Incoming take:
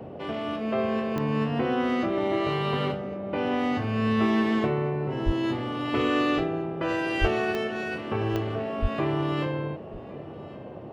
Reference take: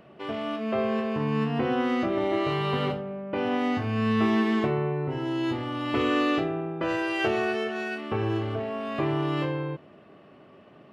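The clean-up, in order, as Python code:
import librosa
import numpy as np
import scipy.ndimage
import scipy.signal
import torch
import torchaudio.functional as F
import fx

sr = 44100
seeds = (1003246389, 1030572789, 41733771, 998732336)

y = fx.fix_declick_ar(x, sr, threshold=10.0)
y = fx.highpass(y, sr, hz=140.0, slope=24, at=(5.25, 5.37), fade=0.02)
y = fx.highpass(y, sr, hz=140.0, slope=24, at=(7.2, 7.32), fade=0.02)
y = fx.highpass(y, sr, hz=140.0, slope=24, at=(8.81, 8.93), fade=0.02)
y = fx.noise_reduce(y, sr, print_start_s=10.41, print_end_s=10.91, reduce_db=12.0)
y = fx.fix_echo_inverse(y, sr, delay_ms=1109, level_db=-19.5)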